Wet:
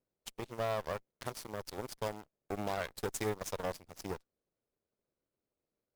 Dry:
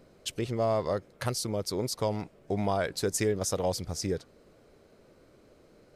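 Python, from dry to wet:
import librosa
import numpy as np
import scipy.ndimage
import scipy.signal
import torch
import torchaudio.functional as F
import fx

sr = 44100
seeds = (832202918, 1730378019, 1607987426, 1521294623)

y = fx.block_float(x, sr, bits=5)
y = fx.cheby_harmonics(y, sr, harmonics=(3, 6, 7), levels_db=(-33, -21, -17), full_scale_db=-16.0)
y = y * 10.0 ** (-7.5 / 20.0)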